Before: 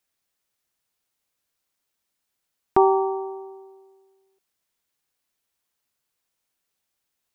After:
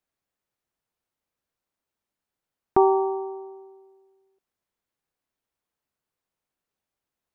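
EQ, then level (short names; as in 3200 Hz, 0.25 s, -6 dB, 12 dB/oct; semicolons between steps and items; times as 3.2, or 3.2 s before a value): high shelf 2000 Hz -12 dB; 0.0 dB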